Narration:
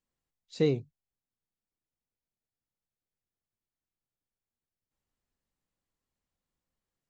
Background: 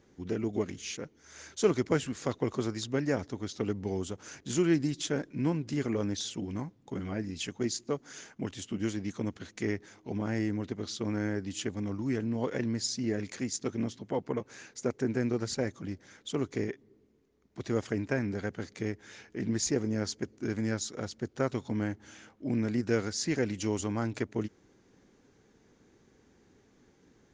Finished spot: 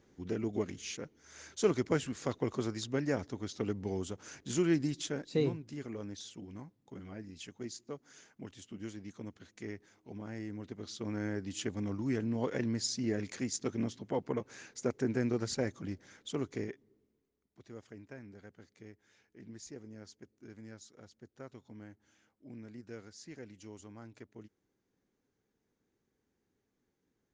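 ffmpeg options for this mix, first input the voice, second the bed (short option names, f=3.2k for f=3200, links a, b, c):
-filter_complex "[0:a]adelay=4750,volume=-4.5dB[a];[1:a]volume=6dB,afade=t=out:st=4.96:d=0.36:silence=0.398107,afade=t=in:st=10.44:d=1.32:silence=0.354813,afade=t=out:st=15.96:d=1.65:silence=0.149624[b];[a][b]amix=inputs=2:normalize=0"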